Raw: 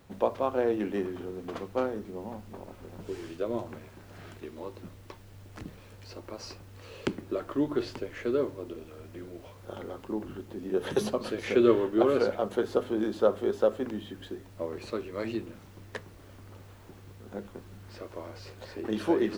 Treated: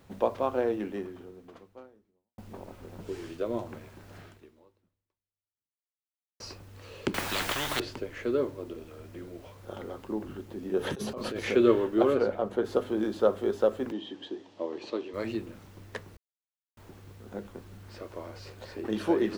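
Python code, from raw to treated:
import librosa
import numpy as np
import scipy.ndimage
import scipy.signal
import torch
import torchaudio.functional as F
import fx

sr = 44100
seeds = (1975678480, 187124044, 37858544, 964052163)

y = fx.spectral_comp(x, sr, ratio=10.0, at=(7.14, 7.8))
y = fx.over_compress(y, sr, threshold_db=-34.0, ratio=-1.0, at=(10.79, 11.51))
y = fx.high_shelf(y, sr, hz=2800.0, db=-10.0, at=(12.13, 12.64), fade=0.02)
y = fx.cabinet(y, sr, low_hz=270.0, low_slope=12, high_hz=6200.0, hz=(310.0, 870.0, 1400.0, 2200.0, 3200.0), db=(6, 4, -7, -4, 6), at=(13.92, 15.14))
y = fx.edit(y, sr, fx.fade_out_span(start_s=0.54, length_s=1.84, curve='qua'),
    fx.fade_out_span(start_s=4.17, length_s=2.23, curve='exp'),
    fx.silence(start_s=16.17, length_s=0.6), tone=tone)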